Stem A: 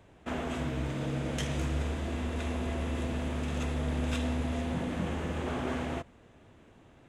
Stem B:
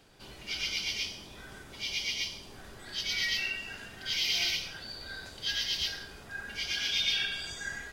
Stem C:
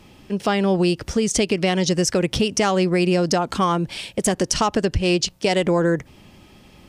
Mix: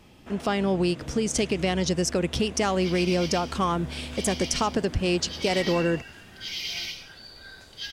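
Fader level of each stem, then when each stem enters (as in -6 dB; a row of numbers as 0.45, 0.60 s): -7.0, -3.0, -5.5 dB; 0.00, 2.35, 0.00 s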